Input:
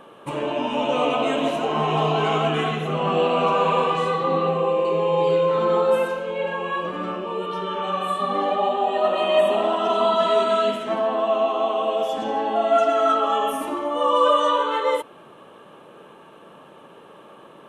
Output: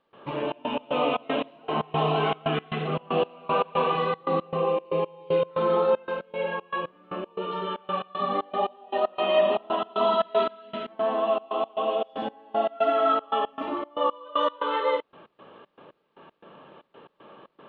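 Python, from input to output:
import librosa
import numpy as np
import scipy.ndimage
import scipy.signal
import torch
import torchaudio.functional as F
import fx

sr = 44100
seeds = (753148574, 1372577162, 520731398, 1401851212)

y = fx.step_gate(x, sr, bpm=116, pattern='.xxx.x.xx.x..x', floor_db=-24.0, edge_ms=4.5)
y = fx.quant_dither(y, sr, seeds[0], bits=12, dither='none')
y = scipy.signal.sosfilt(scipy.signal.butter(6, 4000.0, 'lowpass', fs=sr, output='sos'), y)
y = y * 10.0 ** (-3.0 / 20.0)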